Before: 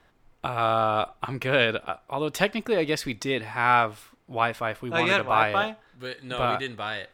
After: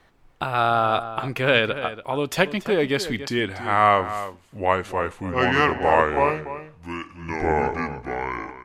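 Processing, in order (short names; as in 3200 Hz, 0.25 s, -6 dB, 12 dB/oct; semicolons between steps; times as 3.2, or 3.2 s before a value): speed glide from 108% -> 57%; outdoor echo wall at 49 m, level -12 dB; gain +3 dB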